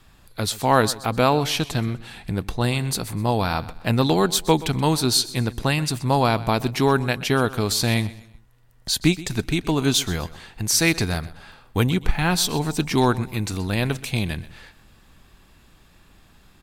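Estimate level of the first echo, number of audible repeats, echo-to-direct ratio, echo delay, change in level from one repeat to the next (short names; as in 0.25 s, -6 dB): -18.0 dB, 2, -17.5 dB, 0.126 s, -9.0 dB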